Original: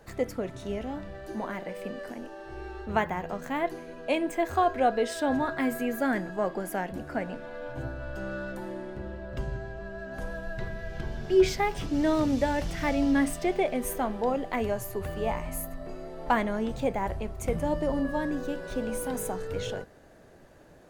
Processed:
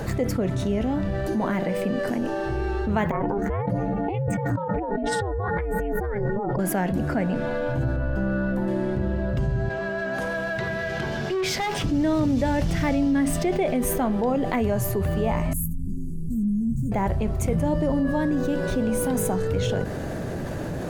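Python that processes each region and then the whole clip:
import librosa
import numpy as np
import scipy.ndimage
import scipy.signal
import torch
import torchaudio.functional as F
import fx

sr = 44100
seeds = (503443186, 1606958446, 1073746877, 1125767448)

y = fx.chain(x, sr, fx.spec_expand(power=1.6),
    fx.over_compress(threshold_db=-36.0, ratio=-1.0),
    fx.ring_mod(carrier_hz=200.0), at=(3.11, 6.59))
y = fx.chain(y, sr, fx.peak_eq(hz=8500.0, db=-12.0, octaves=3.0),
    fx.comb(ms=4.1, depth=0.31), at=(7.96, 8.68))
y = fx.chain(y, sr, fx.highpass(hz=790.0, slope=6),
    fx.high_shelf(hz=7200.0, db=-5.5),
    fx.tube_stage(drive_db=32.0, bias=0.3), at=(9.69, 11.84))
y = fx.chain(y, sr, fx.cheby2_bandstop(low_hz=650.0, high_hz=3100.0, order=4, stop_db=60),
    fx.ensemble(), at=(15.53, 16.92))
y = fx.peak_eq(y, sr, hz=130.0, db=10.0, octaves=2.3)
y = fx.env_flatten(y, sr, amount_pct=70)
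y = F.gain(torch.from_numpy(y), -3.5).numpy()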